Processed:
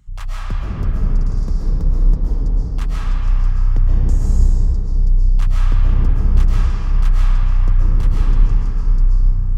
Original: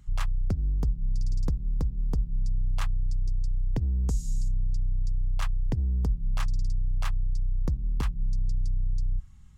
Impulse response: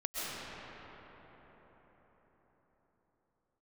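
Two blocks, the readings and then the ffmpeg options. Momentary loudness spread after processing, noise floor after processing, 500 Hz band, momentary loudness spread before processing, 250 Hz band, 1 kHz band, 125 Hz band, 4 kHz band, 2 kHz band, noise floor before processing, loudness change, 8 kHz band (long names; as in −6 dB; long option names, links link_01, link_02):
6 LU, −22 dBFS, +10.0 dB, 3 LU, +10.0 dB, +9.5 dB, +10.5 dB, +6.0 dB, +8.5 dB, −39 dBFS, +11.5 dB, can't be measured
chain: -filter_complex "[1:a]atrim=start_sample=2205[link_01];[0:a][link_01]afir=irnorm=-1:irlink=0,volume=3dB"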